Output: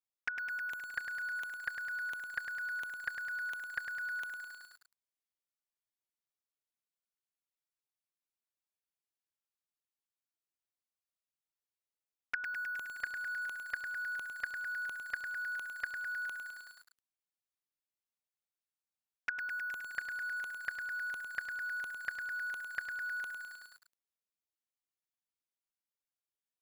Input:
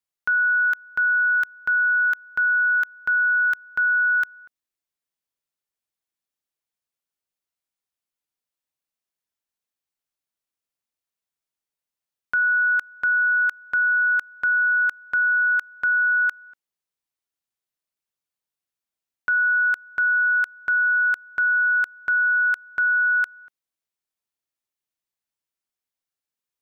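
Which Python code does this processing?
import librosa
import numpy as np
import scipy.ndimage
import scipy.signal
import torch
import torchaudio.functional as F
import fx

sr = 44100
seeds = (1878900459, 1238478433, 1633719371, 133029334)

y = fx.env_flanger(x, sr, rest_ms=9.4, full_db=-21.5)
y = fx.echo_crushed(y, sr, ms=104, feedback_pct=80, bits=8, wet_db=-6.0)
y = y * 10.0 ** (-7.0 / 20.0)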